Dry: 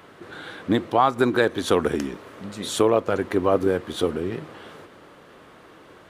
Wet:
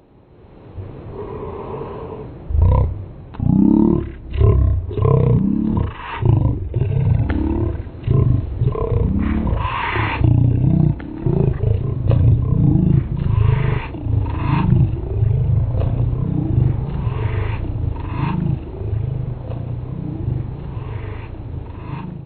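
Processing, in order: echo with dull and thin repeats by turns 0.507 s, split 970 Hz, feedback 64%, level -3.5 dB; wide varispeed 0.274×; AGC gain up to 11 dB; gain -1 dB

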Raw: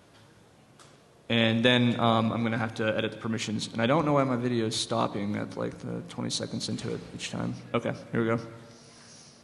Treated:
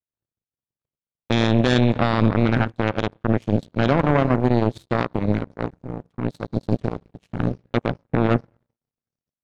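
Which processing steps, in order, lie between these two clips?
RIAA curve playback; limiter -14 dBFS, peak gain reduction 8 dB; power-law curve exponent 3; gain +8.5 dB

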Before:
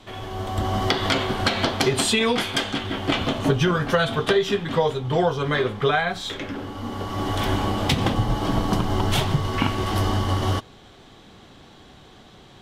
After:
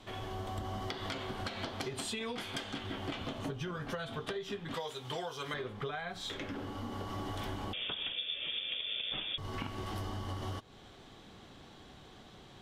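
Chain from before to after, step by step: 4.74–5.54 tilt +3.5 dB/oct; compressor 6:1, threshold -30 dBFS, peak gain reduction 15 dB; 7.73–9.38 inverted band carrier 3500 Hz; gain -6.5 dB

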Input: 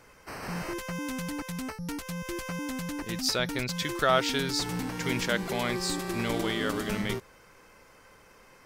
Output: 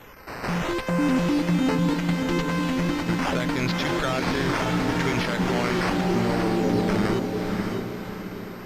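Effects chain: 0.88–1.94 bell 380 Hz +10 dB 2.7 oct; 5.96–6.88 spectral delete 1000–3900 Hz; in parallel at +2 dB: level quantiser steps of 19 dB; on the sum: limiter -19.5 dBFS, peak gain reduction 11.5 dB; decimation with a swept rate 9×, swing 100% 0.74 Hz; on a send: diffused feedback echo 0.589 s, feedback 44%, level -3.5 dB; on the sum: whine 13000 Hz -41 dBFS; air absorption 79 m; gain +4 dB

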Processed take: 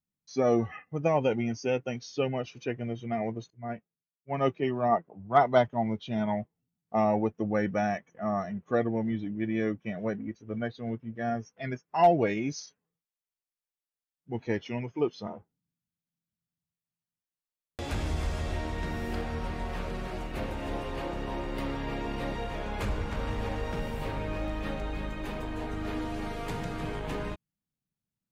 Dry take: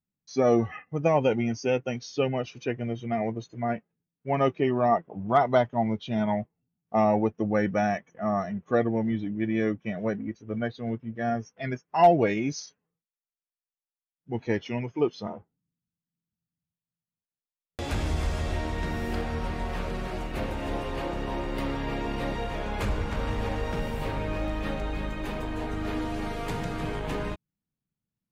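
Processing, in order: 3.5–5.68 three-band expander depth 100%; gain -3 dB

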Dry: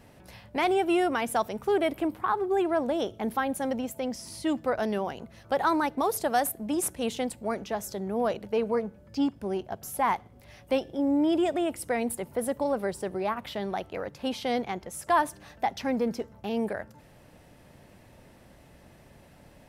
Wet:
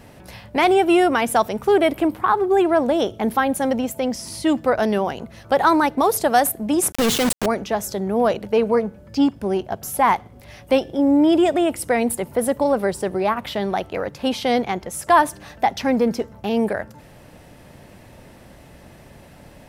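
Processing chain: 6.92–7.46 companded quantiser 2-bit; gain +9 dB

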